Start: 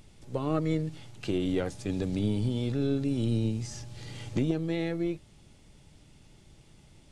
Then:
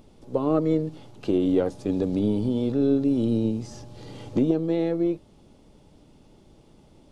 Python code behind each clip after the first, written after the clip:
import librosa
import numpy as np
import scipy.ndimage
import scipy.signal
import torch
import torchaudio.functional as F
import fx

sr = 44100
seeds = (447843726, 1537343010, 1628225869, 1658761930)

y = fx.graphic_eq(x, sr, hz=(125, 250, 500, 1000, 2000, 8000), db=(-3, 7, 7, 5, -6, -6))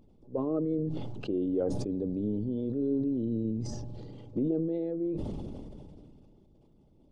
y = fx.envelope_sharpen(x, sr, power=1.5)
y = fx.sustainer(y, sr, db_per_s=22.0)
y = y * 10.0 ** (-8.5 / 20.0)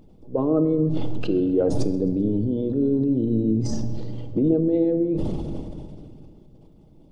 y = fx.echo_feedback(x, sr, ms=130, feedback_pct=49, wet_db=-22.0)
y = fx.room_shoebox(y, sr, seeds[0], volume_m3=1500.0, walls='mixed', distance_m=0.58)
y = y * 10.0 ** (8.5 / 20.0)